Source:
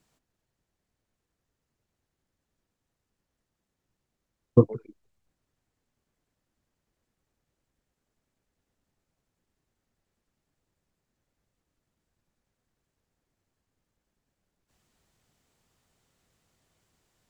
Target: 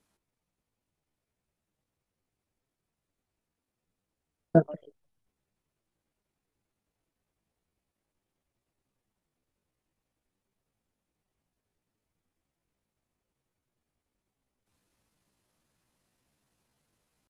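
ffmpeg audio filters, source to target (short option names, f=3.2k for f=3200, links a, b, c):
-af "aresample=22050,aresample=44100,asetrate=60591,aresample=44100,atempo=0.727827,volume=-3.5dB"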